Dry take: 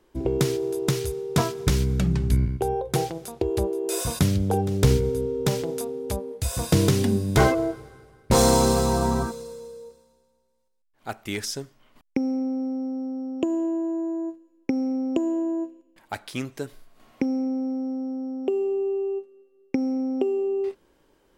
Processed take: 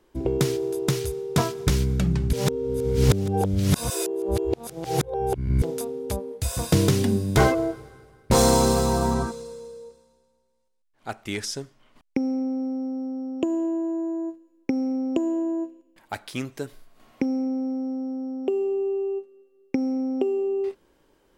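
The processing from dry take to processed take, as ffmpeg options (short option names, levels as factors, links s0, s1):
-filter_complex "[0:a]asettb=1/sr,asplit=3[s0][s1][s2];[s0]atrim=end=9.144[s3];[s1]atrim=start=9.14:end=12.58,asetpts=PTS-STARTPTS,afade=t=in:d=0.004:c=qsin,afade=t=out:st=3.436:d=0.004:c=qsin,lowpass=11000[s4];[s2]atrim=start=12.576[s5];[s3][s4]acrossfade=d=0.004:c1=hsin:c2=qsin[s6];[s6][s5]acrossfade=d=0.004:c1=qsin:c2=hsin,asplit=3[s7][s8][s9];[s7]atrim=end=2.332[s10];[s8]atrim=start=2.328:end=5.622,asetpts=PTS-STARTPTS,areverse[s11];[s9]atrim=start=5.618[s12];[s10][s11]acrossfade=d=0.004:c1=hsin:c2=hsin[s13];[s13][s12]acrossfade=d=0.004:c1=hsin:c2=hsin"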